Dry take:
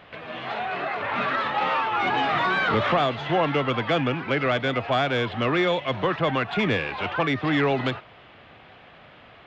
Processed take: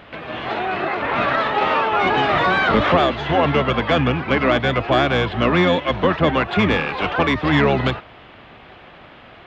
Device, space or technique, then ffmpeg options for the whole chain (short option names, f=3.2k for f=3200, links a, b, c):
octave pedal: -filter_complex "[0:a]asettb=1/sr,asplit=3[a][b][c];[a]atrim=end=6.884[d];[b]atrim=start=6.88:end=7.62,asetpts=PTS-STARTPTS,afade=t=in:d=0.004:c=qsin,afade=t=out:st=0.736:d=0.004:c=qsin,highshelf=f=5.9k:g=5[e];[c]atrim=start=7.616[f];[d][e]acrossfade=d=0.004:c1=hsin:c2=qsin[g];[g][f]acrossfade=d=0.004:c1=qsin:c2=hsin,asplit=2[h][i];[i]asetrate=22050,aresample=44100,atempo=2,volume=-5dB[j];[h][j]amix=inputs=2:normalize=0,volume=5dB"